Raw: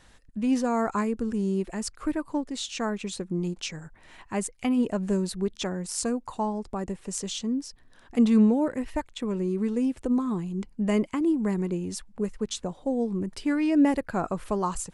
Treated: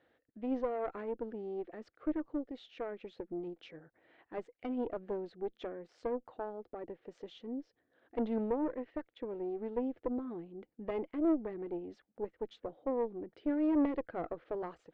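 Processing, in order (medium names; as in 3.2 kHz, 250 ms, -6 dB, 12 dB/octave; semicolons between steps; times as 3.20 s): cabinet simulation 170–3000 Hz, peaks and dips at 190 Hz -9 dB, 320 Hz +8 dB, 490 Hz +9 dB, 690 Hz +5 dB, 1 kHz -9 dB, 2.6 kHz -6 dB; valve stage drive 16 dB, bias 0.8; trim -7.5 dB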